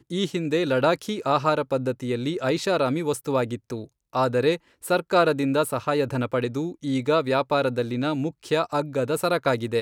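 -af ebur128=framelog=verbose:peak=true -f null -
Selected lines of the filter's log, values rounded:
Integrated loudness:
  I:         -24.4 LUFS
  Threshold: -34.5 LUFS
Loudness range:
  LRA:         1.7 LU
  Threshold: -44.5 LUFS
  LRA low:   -25.4 LUFS
  LRA high:  -23.7 LUFS
True peak:
  Peak:       -7.6 dBFS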